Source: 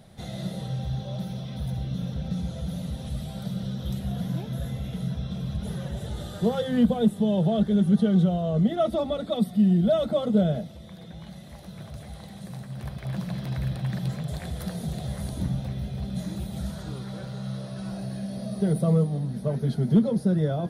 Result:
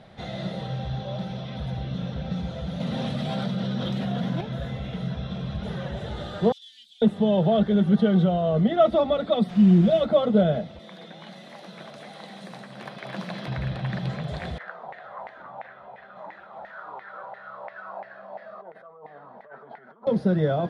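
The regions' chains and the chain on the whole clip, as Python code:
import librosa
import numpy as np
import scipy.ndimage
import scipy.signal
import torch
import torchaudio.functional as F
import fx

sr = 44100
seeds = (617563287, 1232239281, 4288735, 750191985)

y = fx.chain(x, sr, fx.highpass(hz=120.0, slope=24),
    fx.peak_eq(hz=240.0, db=5.5, octaves=0.24),
    fx.env_flatten(amount_pct=70), at=(2.8, 4.41))
y = fx.chain(y, sr, fx.cheby2_highpass(hz=1200.0, order=4, stop_db=60),
    fx.over_compress(threshold_db=-49.0, ratio=-0.5), at=(6.52, 7.02))
y = fx.peak_eq(y, sr, hz=1300.0, db=-12.0, octaves=1.4, at=(9.48, 10.0), fade=0.02)
y = fx.comb(y, sr, ms=5.8, depth=0.74, at=(9.48, 10.0), fade=0.02)
y = fx.dmg_noise_colour(y, sr, seeds[0], colour='pink', level_db=-48.0, at=(9.48, 10.0), fade=0.02)
y = fx.chain(y, sr, fx.highpass(hz=190.0, slope=24),
    fx.high_shelf(hz=6700.0, db=11.5), at=(10.79, 13.48))
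y = fx.chain(y, sr, fx.peak_eq(hz=660.0, db=12.0, octaves=2.2),
    fx.over_compress(threshold_db=-24.0, ratio=-1.0),
    fx.filter_lfo_bandpass(shape='saw_down', hz=2.9, low_hz=830.0, high_hz=2000.0, q=6.6), at=(14.58, 20.07))
y = scipy.signal.sosfilt(scipy.signal.butter(2, 3000.0, 'lowpass', fs=sr, output='sos'), y)
y = fx.low_shelf(y, sr, hz=320.0, db=-10.5)
y = y * librosa.db_to_amplitude(8.0)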